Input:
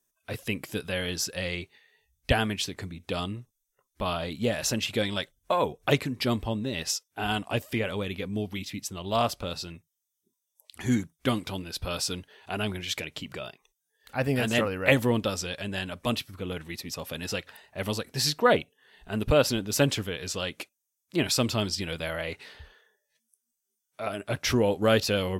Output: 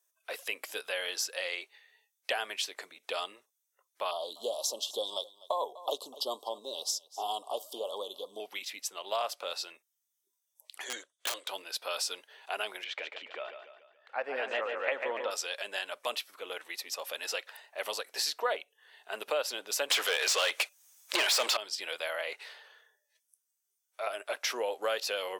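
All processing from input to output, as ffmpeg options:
-filter_complex "[0:a]asettb=1/sr,asplit=3[a][b][c];[a]atrim=end=4.114[d];[b]atrim=start=4.11:end=8.4,asetpts=PTS-STARTPTS,afade=t=in:d=0.004:c=qsin,afade=t=out:st=4.286:d=0.004:c=qsin,asuperstop=centerf=1900:order=12:qfactor=0.93,aecho=1:1:248:0.0841,atrim=end_sample=189189[e];[c]atrim=start=8.396[f];[d][e]acrossfade=d=0.004:c1=hsin:c2=qsin[g];[g][f]acrossfade=d=0.004:c1=qsin:c2=hsin,asettb=1/sr,asplit=3[h][i][j];[h]atrim=end=10.844[k];[i]atrim=start=10.84:end=11.49,asetpts=PTS-STARTPTS,afade=t=in:d=0.004:c=qsin,afade=t=out:st=0.646:d=0.004:c=qsin,highpass=410,equalizer=f=550:t=q:w=4:g=6,equalizer=f=830:t=q:w=4:g=-10,equalizer=f=1.2k:t=q:w=4:g=-3,equalizer=f=2.3k:t=q:w=4:g=-8,equalizer=f=3.3k:t=q:w=4:g=7,equalizer=f=5.3k:t=q:w=4:g=-7,lowpass=f=8.6k:w=0.5412,lowpass=f=8.6k:w=1.3066,aeval=exprs='(mod(14.1*val(0)+1,2)-1)/14.1':c=same[l];[j]atrim=start=11.486[m];[k][l]acrossfade=d=0.004:c1=hsin:c2=qsin[n];[n][m]acrossfade=d=0.004:c1=qsin:c2=hsin,asettb=1/sr,asplit=3[o][p][q];[o]atrim=end=12.844[r];[p]atrim=start=12.84:end=15.31,asetpts=PTS-STARTPTS,afade=t=in:d=0.004:c=qsin,afade=t=out:st=2.466:d=0.004:c=qsin,lowpass=2.2k,aecho=1:1:143|286|429|572|715:0.398|0.183|0.0842|0.0388|0.0178,atrim=end_sample=108927[s];[q]atrim=start=15.306[t];[r][s]acrossfade=d=0.004:c1=hsin:c2=qsin[u];[u][t]acrossfade=d=0.004:c1=qsin:c2=hsin,asettb=1/sr,asplit=3[v][w][x];[v]atrim=end=19.904[y];[w]atrim=start=19.9:end=21.57,asetpts=PTS-STARTPTS,afade=t=in:d=0.004:c=qsin,afade=t=out:st=1.666:d=0.004:c=qsin,acontrast=44,asplit=2[z][aa];[aa]highpass=f=720:p=1,volume=26dB,asoftclip=type=tanh:threshold=-6dB[ab];[z][ab]amix=inputs=2:normalize=0,lowpass=f=6.9k:p=1,volume=-6dB[ac];[x]atrim=start=21.566[ad];[y][ac]acrossfade=d=0.004:c1=hsin:c2=qsin[ae];[ae][ad]acrossfade=d=0.004:c1=qsin:c2=hsin,highpass=f=520:w=0.5412,highpass=f=520:w=1.3066,acompressor=threshold=-30dB:ratio=3"

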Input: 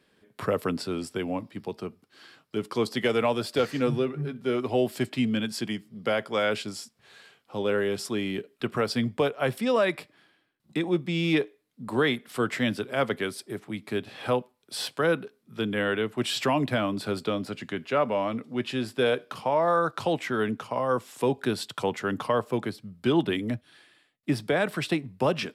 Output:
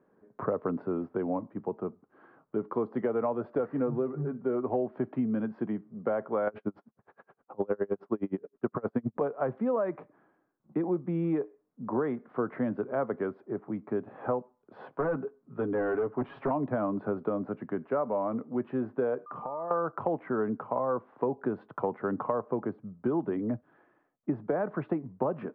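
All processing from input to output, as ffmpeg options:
-filter_complex "[0:a]asettb=1/sr,asplit=3[a][b][c];[a]atrim=end=6.474[d];[b]atrim=start=6.47:end=9.21,asetpts=PTS-STARTPTS,afade=t=in:d=0.004:c=qsin,afade=t=out:st=2.736:d=0.004:c=qsin,acontrast=77,aeval=exprs='val(0)*pow(10,-37*(0.5-0.5*cos(2*PI*9.6*n/s))/20)':c=same[e];[c]atrim=start=9.206[f];[d][e]acrossfade=d=0.004:c1=hsin:c2=qsin[g];[g][f]acrossfade=d=0.004:c1=qsin:c2=hsin,asettb=1/sr,asplit=3[h][i][j];[h]atrim=end=14.954[k];[i]atrim=start=14.95:end=16.51,asetpts=PTS-STARTPTS,afade=t=in:d=0.004:c=qsin,afade=t=out:st=1.556:d=0.004:c=qsin,aecho=1:1:7.3:0.63,atrim=end_sample=68796,asoftclip=type=hard:threshold=-23dB[l];[j]atrim=start=16.506[m];[k][l]acrossfade=d=0.004:c1=hsin:c2=qsin[n];[n][m]acrossfade=d=0.004:c1=qsin:c2=hsin,asettb=1/sr,asplit=3[o][p][q];[o]atrim=end=19.264[r];[p]atrim=start=19.26:end=19.71,asetpts=PTS-STARTPTS,afade=t=in:d=0.004:c=qsin,afade=t=out:st=0.446:d=0.004:c=qsin,agate=range=-33dB:threshold=-51dB:ratio=3:release=100:detection=peak,acompressor=threshold=-34dB:ratio=10:attack=3.2:release=140:knee=1:detection=peak,aeval=exprs='val(0)+0.00794*sin(2*PI*1200*n/s)':c=same[s];[q]atrim=start=19.706[t];[r][s]acrossfade=d=0.004:c1=hsin:c2=qsin[u];[u][t]acrossfade=d=0.004:c1=qsin:c2=hsin,lowpass=f=1.2k:w=0.5412,lowpass=f=1.2k:w=1.3066,equalizer=f=62:w=0.75:g=-12.5,acompressor=threshold=-28dB:ratio=6,volume=2.5dB"

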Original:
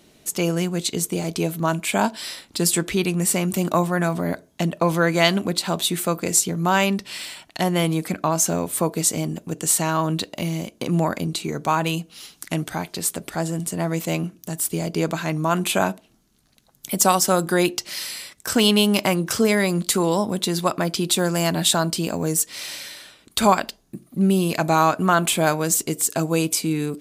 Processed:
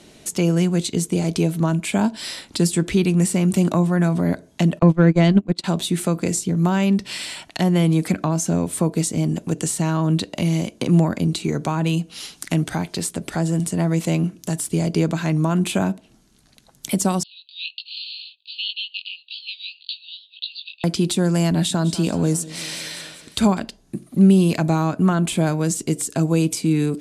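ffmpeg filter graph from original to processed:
-filter_complex "[0:a]asettb=1/sr,asplit=3[a][b][c];[a]atrim=end=4.794[d];[b]atrim=start=4.79:end=5.64,asetpts=PTS-STARTPTS,afade=t=in:d=0.004:c=qsin,afade=t=out:st=0.846:d=0.004:c=qsin,agate=range=-27dB:threshold=-21dB:ratio=16:release=100:detection=peak,aemphasis=mode=reproduction:type=50fm,acontrast=41[e];[c]atrim=start=5.636[f];[d][e]acrossfade=d=0.004:c1=hsin:c2=qsin[g];[g][f]acrossfade=d=0.004:c1=qsin:c2=hsin,asettb=1/sr,asplit=3[h][i][j];[h]atrim=end=17.234[k];[i]atrim=start=17.23:end=20.84,asetpts=PTS-STARTPTS,afade=t=in:d=0.004:c=qsin,afade=t=out:st=3.606:d=0.004:c=qsin,flanger=delay=18:depth=3.1:speed=1.9,asuperpass=centerf=3400:order=20:qfactor=1.7[l];[j]atrim=start=20.836[m];[k][l]acrossfade=d=0.004:c1=hsin:c2=qsin[n];[n][m]acrossfade=d=0.004:c1=qsin:c2=hsin,asettb=1/sr,asplit=3[o][p][q];[o]atrim=end=21.514[r];[p]atrim=start=21.51:end=23.63,asetpts=PTS-STARTPTS,afade=t=in:d=0.004:c=qsin,afade=t=out:st=2.116:d=0.004:c=qsin,highpass=47,aecho=1:1:196|392|588|784|980:0.126|0.0718|0.0409|0.0233|0.0133,atrim=end_sample=93492[s];[q]atrim=start=23.626[t];[r][s]acrossfade=d=0.004:c1=hsin:c2=qsin[u];[u][t]acrossfade=d=0.004:c1=qsin:c2=hsin,lowpass=f=11k:w=0.5412,lowpass=f=11k:w=1.3066,equalizer=f=1.2k:t=o:w=0.21:g=-2.5,acrossover=split=320[v][w];[w]acompressor=threshold=-34dB:ratio=3[x];[v][x]amix=inputs=2:normalize=0,volume=6.5dB"

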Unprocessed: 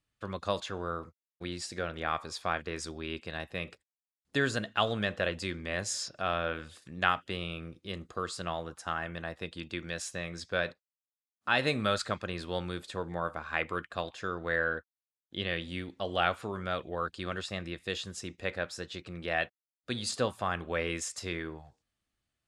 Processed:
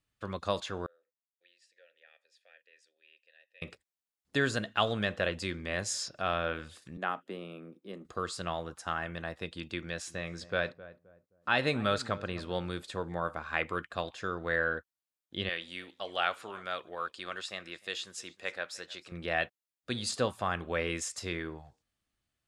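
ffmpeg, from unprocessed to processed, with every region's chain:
-filter_complex "[0:a]asettb=1/sr,asplit=3[a][b][c];[a]atrim=end=0.864[d];[b]atrim=start=0.86:end=3.62,asetpts=PTS-STARTPTS,afade=t=in:d=0.004:c=qsin,afade=t=out:st=2.756:d=0.004:c=qsin,asplit=3[e][f][g];[e]bandpass=f=530:t=q:w=8,volume=0dB[h];[f]bandpass=f=1.84k:t=q:w=8,volume=-6dB[i];[g]bandpass=f=2.48k:t=q:w=8,volume=-9dB[j];[h][i][j]amix=inputs=3:normalize=0,aderivative[k];[c]atrim=start=3.616[l];[d][k]acrossfade=d=0.004:c1=hsin:c2=qsin[m];[m][l]acrossfade=d=0.004:c1=qsin:c2=hsin,asettb=1/sr,asplit=3[n][o][p];[n]atrim=end=6.974[q];[o]atrim=start=6.97:end=8.05,asetpts=PTS-STARTPTS,afade=t=in:d=0.004:c=qsin,afade=t=out:st=1.076:d=0.004:c=qsin,highpass=f=200:w=0.5412,highpass=f=200:w=1.3066,equalizer=f=4.2k:w=0.36:g=-14.5[r];[p]atrim=start=8.046[s];[q][r]acrossfade=d=0.004:c1=hsin:c2=qsin[t];[t][s]acrossfade=d=0.004:c1=qsin:c2=hsin,asettb=1/sr,asplit=3[u][v][w];[u]atrim=end=9.814[x];[v]atrim=start=9.81:end=12.7,asetpts=PTS-STARTPTS,afade=t=in:d=0.004:c=qsin,afade=t=out:st=2.886:d=0.004:c=qsin,highshelf=f=5k:g=-5.5,asplit=2[y][z];[z]adelay=262,lowpass=f=850:p=1,volume=-15dB,asplit=2[aa][ab];[ab]adelay=262,lowpass=f=850:p=1,volume=0.34,asplit=2[ac][ad];[ad]adelay=262,lowpass=f=850:p=1,volume=0.34[ae];[y][aa][ac][ae]amix=inputs=4:normalize=0,atrim=end_sample=127449[af];[w]atrim=start=12.696[ag];[x][af]acrossfade=d=0.004:c1=hsin:c2=qsin[ah];[ah][ag]acrossfade=d=0.004:c1=qsin:c2=hsin,asettb=1/sr,asplit=3[ai][aj][ak];[ai]atrim=end=15.494[al];[aj]atrim=start=15.49:end=19.12,asetpts=PTS-STARTPTS,afade=t=in:d=0.004:c=qsin,afade=t=out:st=3.626:d=0.004:c=qsin,highpass=f=840:p=1,aecho=1:1:306:0.0794,atrim=end_sample=160083[am];[ak]atrim=start=19.116[an];[al][am]acrossfade=d=0.004:c1=hsin:c2=qsin[ao];[ao][an]acrossfade=d=0.004:c1=qsin:c2=hsin"

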